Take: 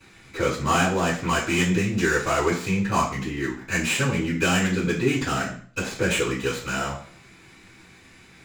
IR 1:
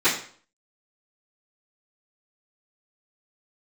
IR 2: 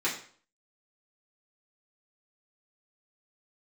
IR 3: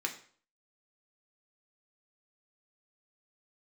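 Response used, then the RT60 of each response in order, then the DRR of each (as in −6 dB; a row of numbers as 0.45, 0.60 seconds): 1; 0.50, 0.50, 0.50 seconds; −17.5, −7.5, 1.5 decibels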